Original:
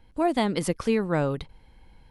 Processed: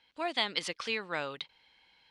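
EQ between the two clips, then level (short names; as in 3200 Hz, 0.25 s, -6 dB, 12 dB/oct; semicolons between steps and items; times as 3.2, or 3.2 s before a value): band-pass 3600 Hz, Q 1.3; air absorption 58 m; +7.0 dB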